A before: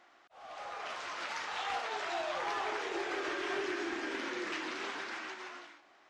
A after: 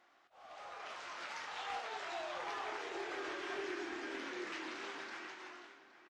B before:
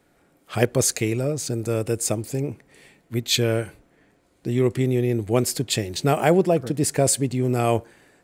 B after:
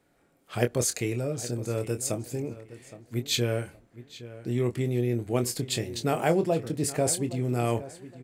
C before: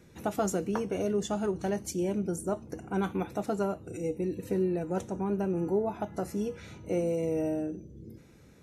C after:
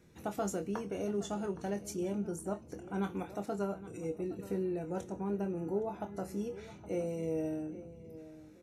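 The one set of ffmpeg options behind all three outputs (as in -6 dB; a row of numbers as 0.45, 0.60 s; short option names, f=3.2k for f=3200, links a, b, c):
-filter_complex "[0:a]asplit=2[a][b];[b]adelay=25,volume=-9dB[c];[a][c]amix=inputs=2:normalize=0,asplit=2[d][e];[e]adelay=817,lowpass=f=3.7k:p=1,volume=-15.5dB,asplit=2[f][g];[g]adelay=817,lowpass=f=3.7k:p=1,volume=0.25,asplit=2[h][i];[i]adelay=817,lowpass=f=3.7k:p=1,volume=0.25[j];[f][h][j]amix=inputs=3:normalize=0[k];[d][k]amix=inputs=2:normalize=0,volume=-6.5dB"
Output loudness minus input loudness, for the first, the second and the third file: -6.0, -6.0, -6.0 LU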